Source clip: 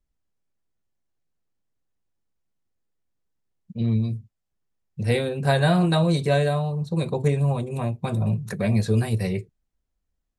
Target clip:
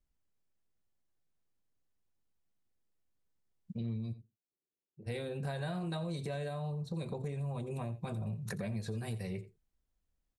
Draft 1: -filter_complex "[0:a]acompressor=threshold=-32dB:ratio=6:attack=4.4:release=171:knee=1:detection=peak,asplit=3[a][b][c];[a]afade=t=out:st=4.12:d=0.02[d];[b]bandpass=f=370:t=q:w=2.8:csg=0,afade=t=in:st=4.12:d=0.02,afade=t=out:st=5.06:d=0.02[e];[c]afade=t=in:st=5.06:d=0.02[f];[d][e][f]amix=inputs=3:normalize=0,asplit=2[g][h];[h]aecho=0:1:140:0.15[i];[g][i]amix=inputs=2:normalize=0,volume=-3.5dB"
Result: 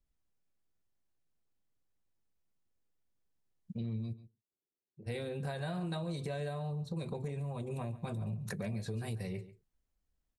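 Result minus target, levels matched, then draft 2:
echo 54 ms late
-filter_complex "[0:a]acompressor=threshold=-32dB:ratio=6:attack=4.4:release=171:knee=1:detection=peak,asplit=3[a][b][c];[a]afade=t=out:st=4.12:d=0.02[d];[b]bandpass=f=370:t=q:w=2.8:csg=0,afade=t=in:st=4.12:d=0.02,afade=t=out:st=5.06:d=0.02[e];[c]afade=t=in:st=5.06:d=0.02[f];[d][e][f]amix=inputs=3:normalize=0,asplit=2[g][h];[h]aecho=0:1:86:0.15[i];[g][i]amix=inputs=2:normalize=0,volume=-3.5dB"

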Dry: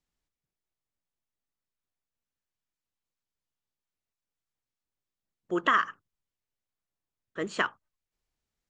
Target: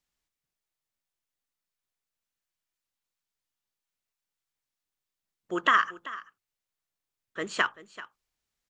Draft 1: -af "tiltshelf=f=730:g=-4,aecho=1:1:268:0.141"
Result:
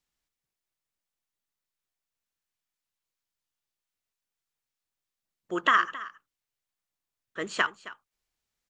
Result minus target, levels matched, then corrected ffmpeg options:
echo 0.119 s early
-af "tiltshelf=f=730:g=-4,aecho=1:1:387:0.141"

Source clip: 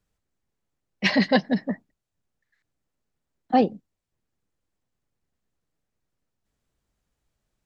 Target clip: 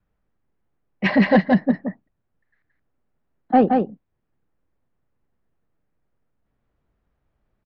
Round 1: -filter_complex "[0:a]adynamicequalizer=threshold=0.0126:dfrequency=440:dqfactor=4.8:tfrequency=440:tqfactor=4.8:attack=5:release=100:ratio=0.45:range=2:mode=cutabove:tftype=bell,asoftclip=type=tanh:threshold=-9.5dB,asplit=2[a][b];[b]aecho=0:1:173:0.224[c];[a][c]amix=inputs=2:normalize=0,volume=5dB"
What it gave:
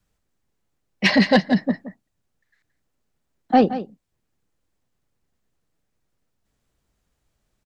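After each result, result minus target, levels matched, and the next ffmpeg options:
echo-to-direct -9 dB; 2000 Hz band +2.5 dB
-filter_complex "[0:a]adynamicequalizer=threshold=0.0126:dfrequency=440:dqfactor=4.8:tfrequency=440:tqfactor=4.8:attack=5:release=100:ratio=0.45:range=2:mode=cutabove:tftype=bell,asoftclip=type=tanh:threshold=-9.5dB,asplit=2[a][b];[b]aecho=0:1:173:0.631[c];[a][c]amix=inputs=2:normalize=0,volume=5dB"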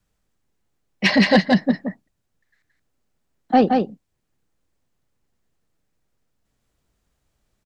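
2000 Hz band +2.5 dB
-filter_complex "[0:a]adynamicequalizer=threshold=0.0126:dfrequency=440:dqfactor=4.8:tfrequency=440:tqfactor=4.8:attack=5:release=100:ratio=0.45:range=2:mode=cutabove:tftype=bell,lowpass=1.8k,asoftclip=type=tanh:threshold=-9.5dB,asplit=2[a][b];[b]aecho=0:1:173:0.631[c];[a][c]amix=inputs=2:normalize=0,volume=5dB"

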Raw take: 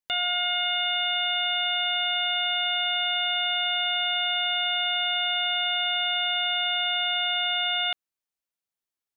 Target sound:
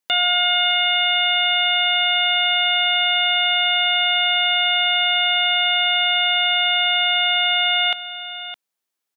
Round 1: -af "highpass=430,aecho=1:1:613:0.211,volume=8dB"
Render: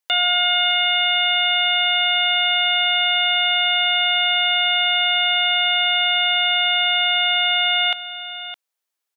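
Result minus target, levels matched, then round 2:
250 Hz band -7.0 dB
-af "highpass=190,aecho=1:1:613:0.211,volume=8dB"

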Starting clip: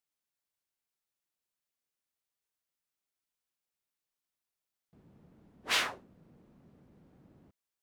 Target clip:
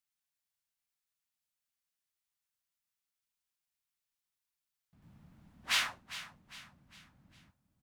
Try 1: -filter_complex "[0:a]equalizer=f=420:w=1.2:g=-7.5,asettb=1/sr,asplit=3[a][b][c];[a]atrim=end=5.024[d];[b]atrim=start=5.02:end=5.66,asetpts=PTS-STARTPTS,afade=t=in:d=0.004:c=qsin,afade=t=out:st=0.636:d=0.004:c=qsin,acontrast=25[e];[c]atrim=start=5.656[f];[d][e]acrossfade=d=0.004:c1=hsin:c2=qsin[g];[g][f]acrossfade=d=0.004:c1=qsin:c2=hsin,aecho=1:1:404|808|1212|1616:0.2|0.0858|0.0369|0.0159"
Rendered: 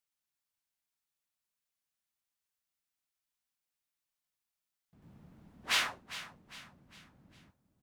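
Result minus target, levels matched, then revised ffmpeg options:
500 Hz band +5.5 dB
-filter_complex "[0:a]equalizer=f=420:w=1.2:g=-17.5,asettb=1/sr,asplit=3[a][b][c];[a]atrim=end=5.024[d];[b]atrim=start=5.02:end=5.66,asetpts=PTS-STARTPTS,afade=t=in:d=0.004:c=qsin,afade=t=out:st=0.636:d=0.004:c=qsin,acontrast=25[e];[c]atrim=start=5.656[f];[d][e]acrossfade=d=0.004:c1=hsin:c2=qsin[g];[g][f]acrossfade=d=0.004:c1=qsin:c2=hsin,aecho=1:1:404|808|1212|1616:0.2|0.0858|0.0369|0.0159"

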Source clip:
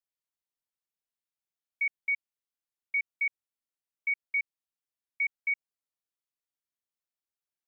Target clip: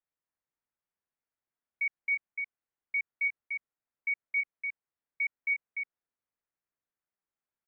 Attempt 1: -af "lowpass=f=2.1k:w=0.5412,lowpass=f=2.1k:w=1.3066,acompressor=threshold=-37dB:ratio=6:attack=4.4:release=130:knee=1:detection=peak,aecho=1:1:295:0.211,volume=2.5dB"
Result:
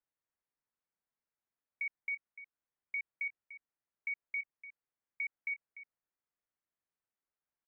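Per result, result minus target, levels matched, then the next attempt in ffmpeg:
compressor: peak gain reduction +7 dB; echo-to-direct -9 dB
-af "lowpass=f=2.1k:w=0.5412,lowpass=f=2.1k:w=1.3066,aecho=1:1:295:0.211,volume=2.5dB"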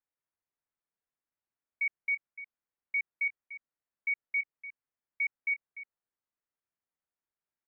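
echo-to-direct -9 dB
-af "lowpass=f=2.1k:w=0.5412,lowpass=f=2.1k:w=1.3066,aecho=1:1:295:0.596,volume=2.5dB"

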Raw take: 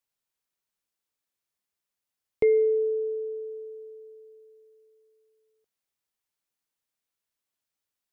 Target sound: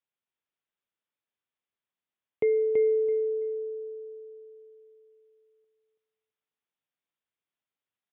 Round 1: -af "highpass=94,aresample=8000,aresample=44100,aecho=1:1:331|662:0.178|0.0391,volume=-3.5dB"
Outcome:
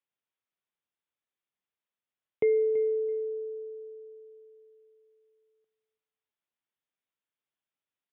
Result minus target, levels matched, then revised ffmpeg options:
echo-to-direct -10.5 dB
-af "highpass=94,aresample=8000,aresample=44100,aecho=1:1:331|662|993:0.596|0.131|0.0288,volume=-3.5dB"

